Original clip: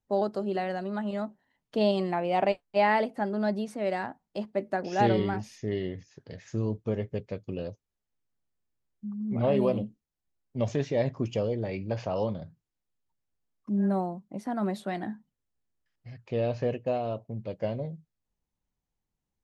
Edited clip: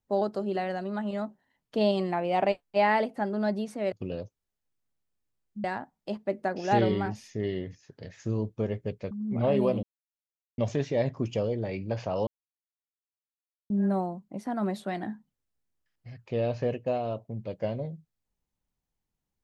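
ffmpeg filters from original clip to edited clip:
ffmpeg -i in.wav -filter_complex "[0:a]asplit=8[link_01][link_02][link_03][link_04][link_05][link_06][link_07][link_08];[link_01]atrim=end=3.922[link_09];[link_02]atrim=start=7.388:end=9.112[link_10];[link_03]atrim=start=3.918:end=7.392[link_11];[link_04]atrim=start=9.108:end=9.83,asetpts=PTS-STARTPTS,afade=type=out:start_time=0.718:duration=0.004:curve=hsin[link_12];[link_05]atrim=start=9.83:end=10.58,asetpts=PTS-STARTPTS,volume=0[link_13];[link_06]atrim=start=10.58:end=12.27,asetpts=PTS-STARTPTS,afade=type=in:duration=0.004:curve=hsin,afade=type=out:start_time=1.686:duration=0.004:curve=hsin[link_14];[link_07]atrim=start=12.27:end=13.7,asetpts=PTS-STARTPTS,volume=0[link_15];[link_08]atrim=start=13.7,asetpts=PTS-STARTPTS,afade=type=in:duration=0.004:curve=hsin[link_16];[link_09][link_10]acrossfade=duration=0.004:curve1=hsin:curve2=hsin[link_17];[link_17][link_11]acrossfade=duration=0.004:curve1=hsin:curve2=hsin[link_18];[link_12][link_13][link_14][link_15][link_16]concat=n=5:v=0:a=1[link_19];[link_18][link_19]acrossfade=duration=0.004:curve1=hsin:curve2=hsin" out.wav

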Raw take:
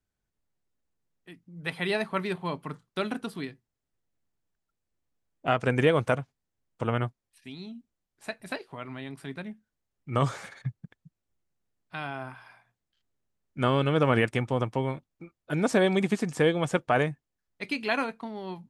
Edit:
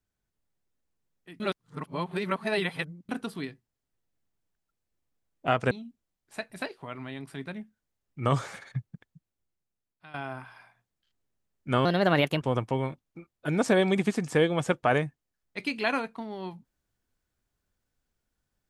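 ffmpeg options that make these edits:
ffmpeg -i in.wav -filter_complex "[0:a]asplit=7[link_01][link_02][link_03][link_04][link_05][link_06][link_07];[link_01]atrim=end=1.402[link_08];[link_02]atrim=start=1.398:end=3.092,asetpts=PTS-STARTPTS,areverse[link_09];[link_03]atrim=start=3.088:end=5.712[link_10];[link_04]atrim=start=7.608:end=12.04,asetpts=PTS-STARTPTS,afade=type=out:start_time=3.232:duration=1.2:silence=0.16788[link_11];[link_05]atrim=start=12.04:end=13.754,asetpts=PTS-STARTPTS,afade=type=in:duration=0.004:curve=hsin:silence=0.16788[link_12];[link_06]atrim=start=13.75:end=14.46,asetpts=PTS-STARTPTS,asetrate=55566,aresample=44100[link_13];[link_07]atrim=start=14.456[link_14];[link_08][link_09]acrossfade=duration=0.004:curve1=hsin:curve2=hsin[link_15];[link_15][link_10]acrossfade=duration=0.004:curve1=hsin:curve2=hsin[link_16];[link_11][link_12]concat=n=2:v=0:a=1[link_17];[link_16][link_17]acrossfade=duration=0.004:curve1=hsin:curve2=hsin[link_18];[link_18][link_13]acrossfade=duration=0.004:curve1=hsin:curve2=hsin[link_19];[link_19][link_14]acrossfade=duration=0.004:curve1=hsin:curve2=hsin" out.wav

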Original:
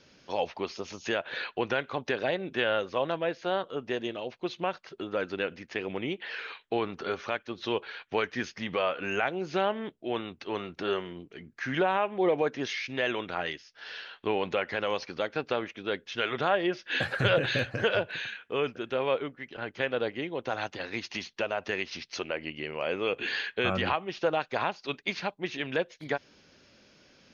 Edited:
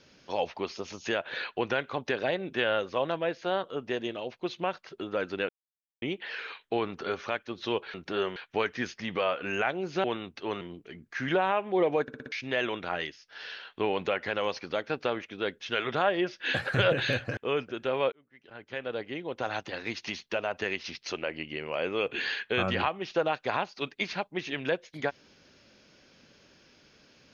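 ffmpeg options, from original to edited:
ffmpeg -i in.wav -filter_complex "[0:a]asplit=14[link_01][link_02][link_03][link_04][link_05][link_06][link_07][link_08][link_09][link_10][link_11][link_12][link_13][link_14];[link_01]atrim=end=5.49,asetpts=PTS-STARTPTS,afade=type=out:start_time=5.486:duration=0.004:curve=hsin[link_15];[link_02]atrim=start=5.49:end=6.02,asetpts=PTS-STARTPTS,volume=0[link_16];[link_03]atrim=start=6.02:end=7.942,asetpts=PTS-STARTPTS,afade=type=in:duration=0.004:curve=hsin[link_17];[link_04]atrim=start=10.648:end=11.072[link_18];[link_05]atrim=start=7.938:end=9.622[link_19];[link_06]atrim=start=10.078:end=10.652[link_20];[link_07]atrim=start=11.068:end=12.542[link_21];[link_08]atrim=start=12.478:end=12.542[link_22];[link_09]atrim=start=12.478:end=12.542[link_23];[link_10]atrim=start=12.478:end=12.542[link_24];[link_11]atrim=start=12.478:end=12.542[link_25];[link_12]atrim=start=12.778:end=17.832[link_26];[link_13]atrim=start=18.438:end=19.19,asetpts=PTS-STARTPTS,afade=type=out:start_time=0.748:duration=0.004:curve=hsin[link_27];[link_14]atrim=start=19.19,asetpts=PTS-STARTPTS,afade=type=in:duration=1.38[link_28];[link_15][link_16][link_17]concat=n=3:v=0:a=1[link_29];[link_29][link_18]acrossfade=duration=0.004:curve1=hsin:curve2=hsin[link_30];[link_30][link_19]acrossfade=duration=0.004:curve1=hsin:curve2=hsin[link_31];[link_31][link_20]acrossfade=duration=0.004:curve1=hsin:curve2=hsin[link_32];[link_32][link_21]acrossfade=duration=0.004:curve1=hsin:curve2=hsin[link_33];[link_33][link_22]acrossfade=duration=0.004:curve1=hsin:curve2=hsin[link_34];[link_34][link_23]acrossfade=duration=0.004:curve1=hsin:curve2=hsin[link_35];[link_35][link_24]acrossfade=duration=0.004:curve1=hsin:curve2=hsin[link_36];[link_36][link_25]acrossfade=duration=0.004:curve1=hsin:curve2=hsin[link_37];[link_37][link_26]acrossfade=duration=0.004:curve1=hsin:curve2=hsin[link_38];[link_27][link_28]concat=n=2:v=0:a=1[link_39];[link_38][link_39]acrossfade=duration=0.004:curve1=hsin:curve2=hsin" out.wav

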